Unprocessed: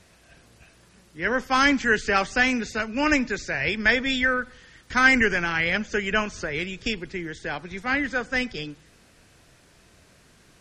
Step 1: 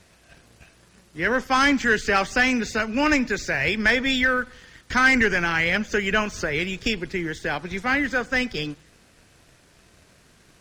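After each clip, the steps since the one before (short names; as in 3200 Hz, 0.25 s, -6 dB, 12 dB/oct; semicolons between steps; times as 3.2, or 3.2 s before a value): in parallel at -0.5 dB: compressor, threshold -29 dBFS, peak gain reduction 15.5 dB; on the sum: sample leveller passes 1; gain -4 dB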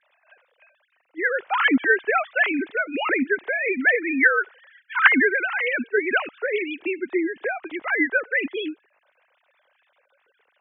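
sine-wave speech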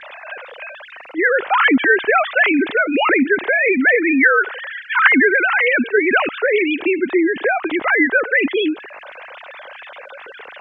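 air absorption 110 m; fast leveller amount 50%; gain +2.5 dB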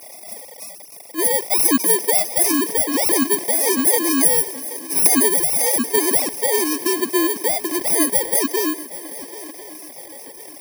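FFT order left unsorted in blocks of 32 samples; swung echo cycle 1.045 s, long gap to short 3:1, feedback 38%, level -17 dB; gain -2.5 dB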